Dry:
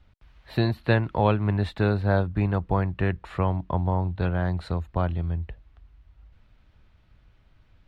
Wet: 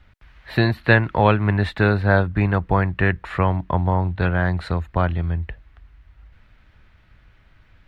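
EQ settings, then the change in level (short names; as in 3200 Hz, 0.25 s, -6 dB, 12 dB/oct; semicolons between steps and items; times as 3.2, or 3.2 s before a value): bell 1800 Hz +8 dB 1.1 oct; +4.5 dB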